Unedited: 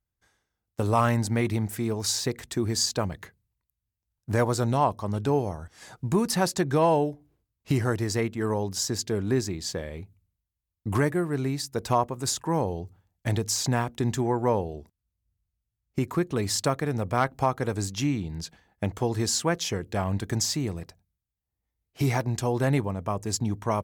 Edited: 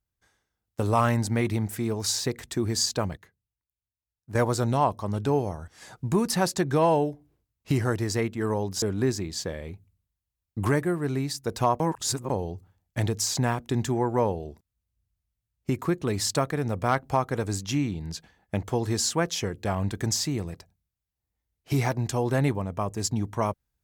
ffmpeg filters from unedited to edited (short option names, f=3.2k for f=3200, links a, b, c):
-filter_complex "[0:a]asplit=6[a][b][c][d][e][f];[a]atrim=end=3.172[g];[b]atrim=start=3.168:end=4.352,asetpts=PTS-STARTPTS,volume=-11dB[h];[c]atrim=start=4.348:end=8.822[i];[d]atrim=start=9.108:end=12.092[j];[e]atrim=start=12.088:end=12.592,asetpts=PTS-STARTPTS,areverse[k];[f]atrim=start=12.588[l];[g][h]acrossfade=d=0.004:c1=hsin:c2=hsin[m];[m][i]acrossfade=d=0.004:c1=hsin:c2=hsin[n];[n][j]acrossfade=d=0.004:c1=hsin:c2=hsin[o];[o][k]acrossfade=d=0.004:c1=hsin:c2=hsin[p];[p][l]acrossfade=d=0.004:c1=hsin:c2=hsin"